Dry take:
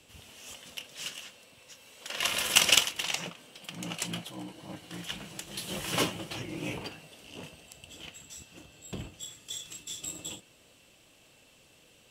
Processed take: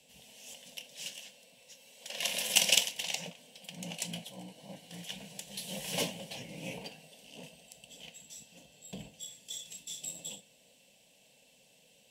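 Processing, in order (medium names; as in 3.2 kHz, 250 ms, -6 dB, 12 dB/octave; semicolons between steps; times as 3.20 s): high-pass 95 Hz 6 dB/octave; static phaser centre 340 Hz, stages 6; reverberation, pre-delay 3 ms, DRR 14.5 dB; trim -2 dB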